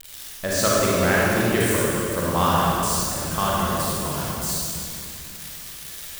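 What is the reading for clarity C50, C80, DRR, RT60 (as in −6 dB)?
−4.5 dB, −2.5 dB, −6.5 dB, 2.8 s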